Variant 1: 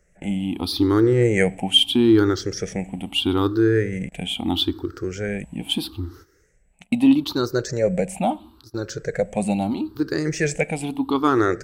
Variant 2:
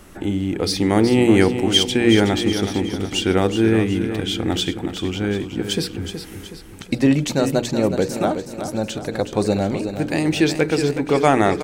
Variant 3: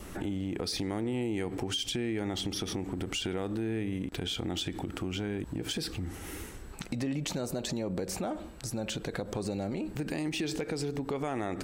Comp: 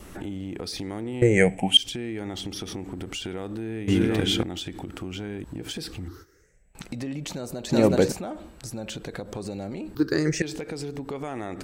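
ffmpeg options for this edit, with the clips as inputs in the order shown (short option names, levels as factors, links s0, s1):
-filter_complex "[0:a]asplit=3[s0][s1][s2];[1:a]asplit=2[s3][s4];[2:a]asplit=6[s5][s6][s7][s8][s9][s10];[s5]atrim=end=1.222[s11];[s0]atrim=start=1.218:end=1.772[s12];[s6]atrim=start=1.768:end=3.882[s13];[s3]atrim=start=3.878:end=4.432[s14];[s7]atrim=start=4.428:end=6.082[s15];[s1]atrim=start=6.078:end=6.752[s16];[s8]atrim=start=6.748:end=7.712[s17];[s4]atrim=start=7.708:end=8.122[s18];[s9]atrim=start=8.118:end=9.952[s19];[s2]atrim=start=9.948:end=10.422[s20];[s10]atrim=start=10.418[s21];[s11][s12]acrossfade=d=0.004:c1=hsin:c2=hsin[s22];[s22][s13]acrossfade=d=0.004:c1=hsin:c2=hsin[s23];[s23][s14]acrossfade=d=0.004:c1=hsin:c2=hsin[s24];[s24][s15]acrossfade=d=0.004:c1=hsin:c2=hsin[s25];[s25][s16]acrossfade=d=0.004:c1=hsin:c2=hsin[s26];[s26][s17]acrossfade=d=0.004:c1=hsin:c2=hsin[s27];[s27][s18]acrossfade=d=0.004:c1=hsin:c2=hsin[s28];[s28][s19]acrossfade=d=0.004:c1=hsin:c2=hsin[s29];[s29][s20]acrossfade=d=0.004:c1=hsin:c2=hsin[s30];[s30][s21]acrossfade=d=0.004:c1=hsin:c2=hsin"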